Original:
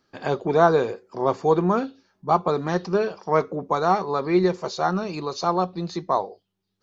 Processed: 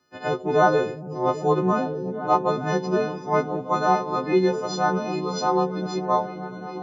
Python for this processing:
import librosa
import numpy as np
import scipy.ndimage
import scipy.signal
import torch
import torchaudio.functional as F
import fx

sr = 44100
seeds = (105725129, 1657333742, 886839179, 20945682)

p1 = fx.freq_snap(x, sr, grid_st=3)
p2 = scipy.signal.sosfilt(scipy.signal.butter(2, 80.0, 'highpass', fs=sr, output='sos'), p1)
p3 = fx.high_shelf(p2, sr, hz=2100.0, db=-9.5)
y = p3 + fx.echo_opening(p3, sr, ms=398, hz=200, octaves=1, feedback_pct=70, wet_db=-6, dry=0)